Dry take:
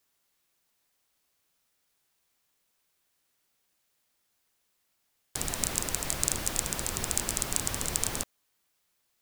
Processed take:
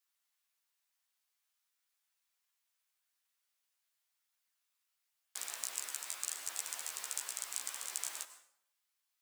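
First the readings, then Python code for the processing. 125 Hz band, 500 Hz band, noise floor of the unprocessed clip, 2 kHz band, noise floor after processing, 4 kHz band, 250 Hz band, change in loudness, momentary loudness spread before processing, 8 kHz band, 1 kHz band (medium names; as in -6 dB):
under -40 dB, -20.0 dB, -76 dBFS, -9.5 dB, -84 dBFS, -9.0 dB, under -30 dB, -9.5 dB, 7 LU, -9.0 dB, -12.0 dB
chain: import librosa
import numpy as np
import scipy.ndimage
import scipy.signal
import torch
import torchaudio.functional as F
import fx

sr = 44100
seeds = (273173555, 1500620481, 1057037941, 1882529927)

y = scipy.signal.sosfilt(scipy.signal.butter(2, 980.0, 'highpass', fs=sr, output='sos'), x)
y = fx.rev_plate(y, sr, seeds[0], rt60_s=0.68, hf_ratio=0.75, predelay_ms=85, drr_db=11.5)
y = fx.chorus_voices(y, sr, voices=2, hz=0.46, base_ms=14, depth_ms=2.3, mix_pct=40)
y = fx.rider(y, sr, range_db=10, speed_s=0.5)
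y = F.gain(torch.from_numpy(y), -6.0).numpy()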